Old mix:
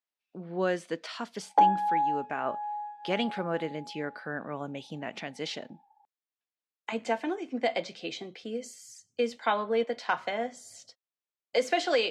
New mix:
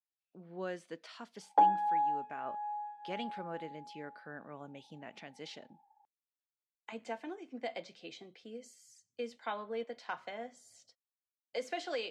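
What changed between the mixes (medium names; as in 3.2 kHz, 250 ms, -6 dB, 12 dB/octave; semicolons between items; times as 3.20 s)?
speech -11.5 dB; background -4.0 dB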